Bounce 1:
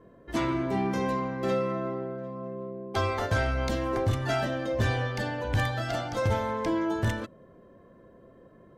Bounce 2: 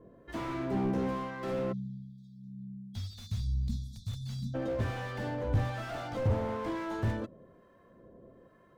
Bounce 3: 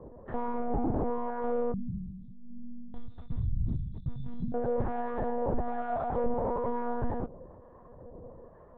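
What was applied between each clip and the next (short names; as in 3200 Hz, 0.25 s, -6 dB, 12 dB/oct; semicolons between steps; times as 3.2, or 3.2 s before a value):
harmonic tremolo 1.1 Hz, depth 70%, crossover 830 Hz; spectral delete 1.72–4.54, 240–3300 Hz; slew limiter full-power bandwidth 15 Hz
EQ curve 380 Hz 0 dB, 810 Hz +6 dB, 3000 Hz -21 dB; compressor 2:1, threshold -37 dBFS, peak gain reduction 8 dB; monotone LPC vocoder at 8 kHz 240 Hz; gain +7 dB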